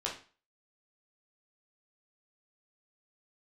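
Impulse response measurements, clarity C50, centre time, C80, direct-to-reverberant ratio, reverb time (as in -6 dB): 7.5 dB, 25 ms, 13.5 dB, -4.0 dB, 0.35 s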